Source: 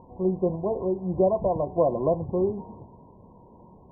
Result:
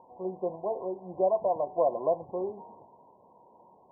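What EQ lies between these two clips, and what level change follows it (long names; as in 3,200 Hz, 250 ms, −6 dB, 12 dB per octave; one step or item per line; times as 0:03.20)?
resonant band-pass 770 Hz, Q 1.7
0.0 dB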